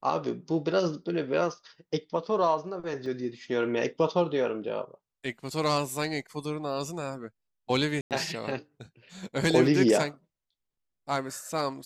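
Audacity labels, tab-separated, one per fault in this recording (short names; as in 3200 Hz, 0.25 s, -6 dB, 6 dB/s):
3.060000	3.060000	gap 2.6 ms
8.010000	8.110000	gap 98 ms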